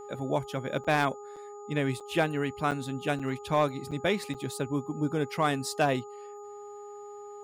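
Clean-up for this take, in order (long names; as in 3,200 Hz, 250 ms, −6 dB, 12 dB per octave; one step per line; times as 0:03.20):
clipped peaks rebuilt −16 dBFS
hum removal 411.4 Hz, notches 3
notch filter 6,900 Hz, Q 30
repair the gap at 0:00.84/0:01.36/0:02.00/0:02.71/0:03.19/0:03.91/0:04.34, 6.2 ms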